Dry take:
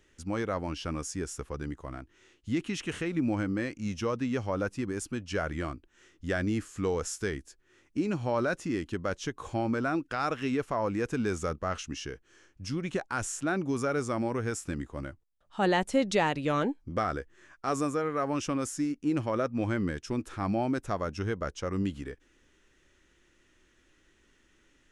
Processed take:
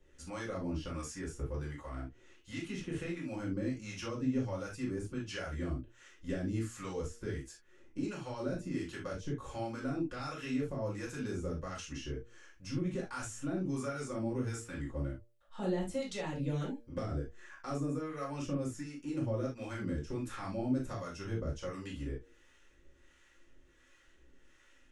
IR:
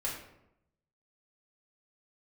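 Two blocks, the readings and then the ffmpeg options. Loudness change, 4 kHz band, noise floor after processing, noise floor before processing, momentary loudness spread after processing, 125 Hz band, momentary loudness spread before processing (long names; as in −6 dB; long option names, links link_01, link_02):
−7.0 dB, −7.5 dB, −64 dBFS, −66 dBFS, 8 LU, −3.0 dB, 9 LU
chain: -filter_complex "[0:a]acrossover=split=340|3700[link_01][link_02][link_03];[link_01]acompressor=threshold=-32dB:ratio=4[link_04];[link_02]acompressor=threshold=-43dB:ratio=4[link_05];[link_03]acompressor=threshold=-48dB:ratio=4[link_06];[link_04][link_05][link_06]amix=inputs=3:normalize=0,bandreject=frequency=117.1:width_type=h:width=4,bandreject=frequency=234.2:width_type=h:width=4,bandreject=frequency=351.3:width_type=h:width=4,bandreject=frequency=468.4:width_type=h:width=4,bandreject=frequency=585.5:width_type=h:width=4,bandreject=frequency=702.6:width_type=h:width=4,acrossover=split=660[link_07][link_08];[link_07]aeval=exprs='val(0)*(1-0.7/2+0.7/2*cos(2*PI*1.4*n/s))':channel_layout=same[link_09];[link_08]aeval=exprs='val(0)*(1-0.7/2-0.7/2*cos(2*PI*1.4*n/s))':channel_layout=same[link_10];[link_09][link_10]amix=inputs=2:normalize=0[link_11];[1:a]atrim=start_sample=2205,afade=type=out:start_time=0.13:duration=0.01,atrim=end_sample=6174[link_12];[link_11][link_12]afir=irnorm=-1:irlink=0"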